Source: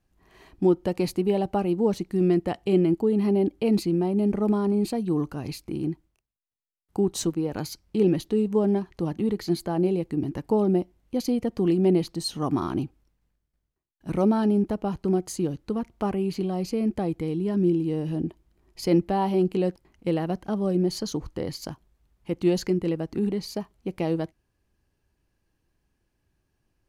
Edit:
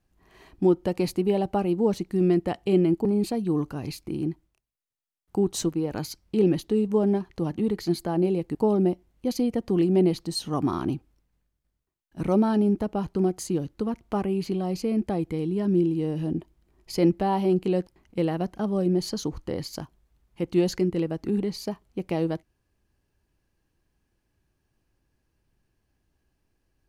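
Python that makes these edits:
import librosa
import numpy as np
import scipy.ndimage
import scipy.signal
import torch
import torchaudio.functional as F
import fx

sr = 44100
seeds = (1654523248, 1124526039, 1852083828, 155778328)

y = fx.edit(x, sr, fx.cut(start_s=3.05, length_s=1.61),
    fx.cut(start_s=10.16, length_s=0.28), tone=tone)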